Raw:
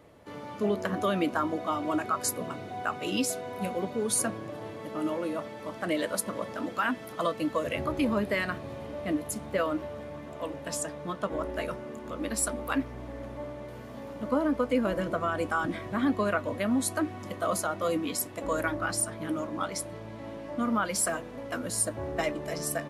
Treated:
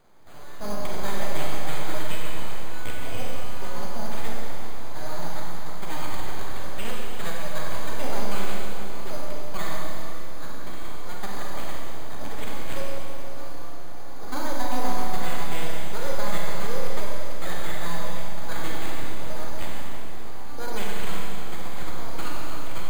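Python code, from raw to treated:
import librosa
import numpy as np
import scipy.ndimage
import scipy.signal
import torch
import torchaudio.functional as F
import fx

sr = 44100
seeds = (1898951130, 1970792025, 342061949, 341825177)

y = np.abs(x)
y = np.repeat(scipy.signal.resample_poly(y, 1, 8), 8)[:len(y)]
y = fx.rev_schroeder(y, sr, rt60_s=2.8, comb_ms=31, drr_db=-3.0)
y = F.gain(torch.from_numpy(y), -3.0).numpy()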